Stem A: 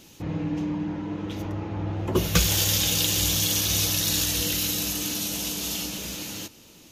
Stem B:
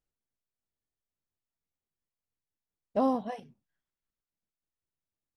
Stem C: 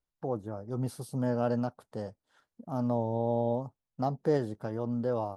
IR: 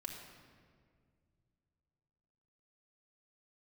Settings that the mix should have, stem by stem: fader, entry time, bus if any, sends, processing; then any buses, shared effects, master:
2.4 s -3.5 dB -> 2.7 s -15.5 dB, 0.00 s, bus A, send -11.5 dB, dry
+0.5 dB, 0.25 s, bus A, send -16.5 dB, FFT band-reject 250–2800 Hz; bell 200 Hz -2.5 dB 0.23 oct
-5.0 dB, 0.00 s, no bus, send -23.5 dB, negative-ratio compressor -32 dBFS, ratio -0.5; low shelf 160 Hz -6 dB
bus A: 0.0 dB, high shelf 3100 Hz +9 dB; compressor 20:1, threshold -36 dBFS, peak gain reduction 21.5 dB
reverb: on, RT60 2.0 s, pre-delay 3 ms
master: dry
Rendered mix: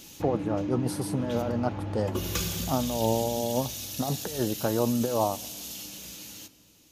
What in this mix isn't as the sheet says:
stem C -5.0 dB -> +6.5 dB; reverb return +7.5 dB

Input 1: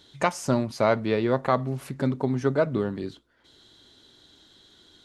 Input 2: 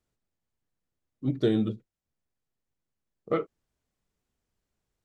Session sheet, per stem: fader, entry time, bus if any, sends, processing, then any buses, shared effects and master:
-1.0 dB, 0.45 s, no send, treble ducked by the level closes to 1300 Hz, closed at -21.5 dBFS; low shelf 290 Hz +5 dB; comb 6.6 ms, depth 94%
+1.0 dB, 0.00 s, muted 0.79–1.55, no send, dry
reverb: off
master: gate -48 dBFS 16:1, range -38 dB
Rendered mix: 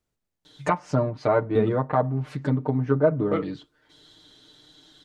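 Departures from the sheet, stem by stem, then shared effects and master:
stem 1: missing low shelf 290 Hz +5 dB; master: missing gate -48 dBFS 16:1, range -38 dB

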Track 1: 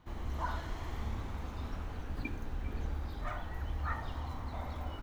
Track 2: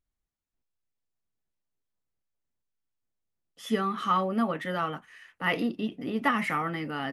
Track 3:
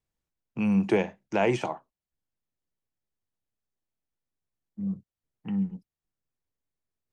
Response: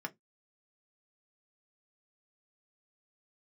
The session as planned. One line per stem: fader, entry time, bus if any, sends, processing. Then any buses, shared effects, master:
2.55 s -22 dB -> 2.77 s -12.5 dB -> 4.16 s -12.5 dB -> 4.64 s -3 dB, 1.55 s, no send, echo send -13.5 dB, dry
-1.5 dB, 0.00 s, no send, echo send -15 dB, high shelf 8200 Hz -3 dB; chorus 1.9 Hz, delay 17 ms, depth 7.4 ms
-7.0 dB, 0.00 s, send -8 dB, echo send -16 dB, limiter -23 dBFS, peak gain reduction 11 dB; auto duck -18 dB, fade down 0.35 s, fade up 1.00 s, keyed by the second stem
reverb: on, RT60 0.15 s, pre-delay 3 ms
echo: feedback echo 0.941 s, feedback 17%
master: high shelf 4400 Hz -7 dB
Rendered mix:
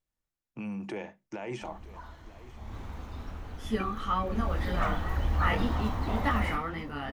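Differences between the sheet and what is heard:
stem 1 -22.0 dB -> -10.0 dB; master: missing high shelf 4400 Hz -7 dB

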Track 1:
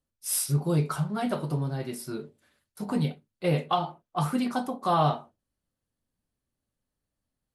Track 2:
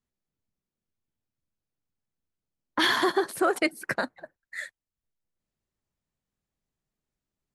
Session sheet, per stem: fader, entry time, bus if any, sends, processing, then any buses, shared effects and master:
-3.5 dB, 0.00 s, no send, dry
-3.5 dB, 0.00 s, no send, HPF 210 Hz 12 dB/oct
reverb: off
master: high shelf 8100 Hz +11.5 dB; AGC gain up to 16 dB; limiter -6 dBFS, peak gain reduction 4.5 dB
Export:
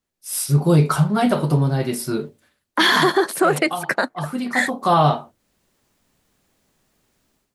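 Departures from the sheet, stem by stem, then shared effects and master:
stem 2 -3.5 dB -> +7.0 dB; master: missing high shelf 8100 Hz +11.5 dB

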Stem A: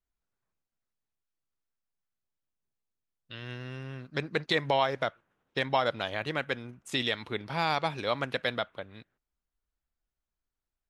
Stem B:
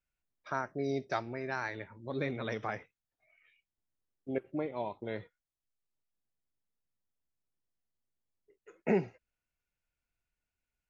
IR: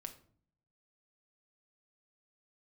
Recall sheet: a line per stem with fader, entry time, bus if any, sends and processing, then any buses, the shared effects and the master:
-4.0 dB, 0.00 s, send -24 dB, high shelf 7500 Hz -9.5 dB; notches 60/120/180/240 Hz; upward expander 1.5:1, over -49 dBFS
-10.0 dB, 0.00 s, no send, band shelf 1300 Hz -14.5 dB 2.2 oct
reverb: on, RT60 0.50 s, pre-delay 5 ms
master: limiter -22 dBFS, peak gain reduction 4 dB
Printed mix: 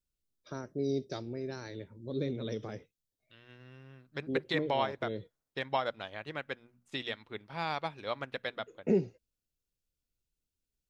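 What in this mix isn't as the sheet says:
stem B -10.0 dB -> +2.0 dB; master: missing limiter -22 dBFS, peak gain reduction 4 dB

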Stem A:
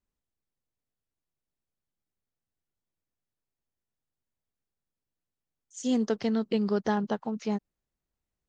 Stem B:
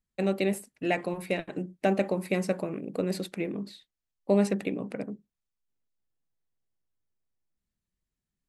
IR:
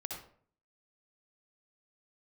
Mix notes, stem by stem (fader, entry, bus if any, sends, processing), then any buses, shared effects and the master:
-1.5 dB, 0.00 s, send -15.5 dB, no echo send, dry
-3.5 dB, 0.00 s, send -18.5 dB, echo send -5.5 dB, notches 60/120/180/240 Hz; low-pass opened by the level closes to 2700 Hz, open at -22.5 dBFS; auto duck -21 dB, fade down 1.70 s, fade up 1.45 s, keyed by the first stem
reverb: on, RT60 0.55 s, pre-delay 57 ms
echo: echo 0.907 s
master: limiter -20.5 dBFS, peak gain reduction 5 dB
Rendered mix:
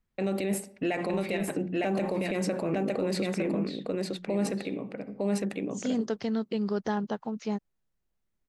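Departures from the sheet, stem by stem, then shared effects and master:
stem A: send off; stem B -3.5 dB -> +6.5 dB

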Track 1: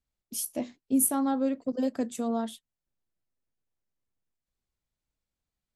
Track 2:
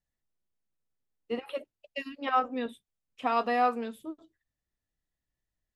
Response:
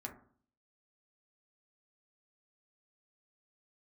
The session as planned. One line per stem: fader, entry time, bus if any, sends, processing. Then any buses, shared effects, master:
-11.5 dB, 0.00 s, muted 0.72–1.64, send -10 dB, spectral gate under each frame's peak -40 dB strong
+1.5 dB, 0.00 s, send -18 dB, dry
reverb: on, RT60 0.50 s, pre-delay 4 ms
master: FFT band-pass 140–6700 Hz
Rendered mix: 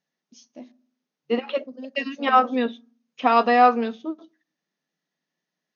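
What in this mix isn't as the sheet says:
stem 1: missing spectral gate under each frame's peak -40 dB strong; stem 2 +1.5 dB -> +9.0 dB

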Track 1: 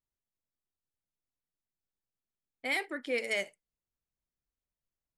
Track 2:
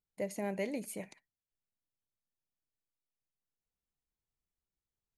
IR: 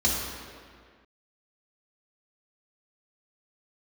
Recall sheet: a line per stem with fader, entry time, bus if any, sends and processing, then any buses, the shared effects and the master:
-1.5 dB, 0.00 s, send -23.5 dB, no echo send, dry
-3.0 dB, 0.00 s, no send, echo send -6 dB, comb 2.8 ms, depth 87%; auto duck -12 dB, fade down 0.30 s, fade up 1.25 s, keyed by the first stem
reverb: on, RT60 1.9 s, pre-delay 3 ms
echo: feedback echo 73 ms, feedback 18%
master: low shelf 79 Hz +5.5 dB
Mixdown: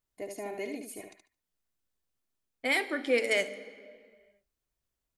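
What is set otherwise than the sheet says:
stem 1 -1.5 dB -> +5.0 dB; master: missing low shelf 79 Hz +5.5 dB

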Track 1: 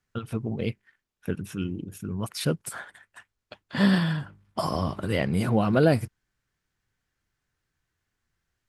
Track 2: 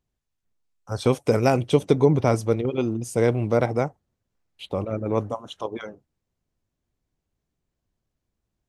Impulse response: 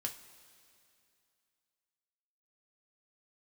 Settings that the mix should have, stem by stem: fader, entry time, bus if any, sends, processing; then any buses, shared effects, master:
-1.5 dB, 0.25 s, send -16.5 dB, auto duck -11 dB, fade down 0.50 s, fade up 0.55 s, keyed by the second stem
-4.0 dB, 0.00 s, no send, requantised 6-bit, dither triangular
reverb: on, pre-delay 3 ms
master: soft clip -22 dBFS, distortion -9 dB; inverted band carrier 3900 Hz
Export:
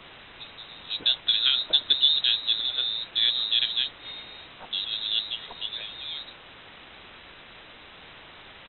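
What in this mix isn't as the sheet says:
stem 1 -1.5 dB -> -12.5 dB; master: missing soft clip -22 dBFS, distortion -9 dB

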